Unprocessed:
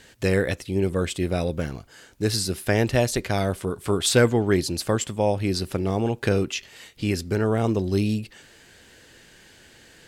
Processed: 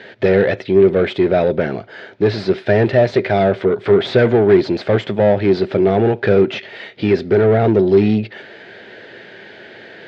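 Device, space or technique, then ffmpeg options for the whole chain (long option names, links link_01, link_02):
overdrive pedal into a guitar cabinet: -filter_complex "[0:a]asplit=2[link_01][link_02];[link_02]highpass=frequency=720:poles=1,volume=24dB,asoftclip=type=tanh:threshold=-8.5dB[link_03];[link_01][link_03]amix=inputs=2:normalize=0,lowpass=frequency=4400:poles=1,volume=-6dB,highpass=100,equalizer=frequency=110:width_type=q:width=4:gain=9,equalizer=frequency=200:width_type=q:width=4:gain=7,equalizer=frequency=390:width_type=q:width=4:gain=9,equalizer=frequency=630:width_type=q:width=4:gain=7,equalizer=frequency=1100:width_type=q:width=4:gain=-8,equalizer=frequency=2800:width_type=q:width=4:gain=-7,lowpass=frequency=3400:width=0.5412,lowpass=frequency=3400:width=1.3066,volume=-1dB"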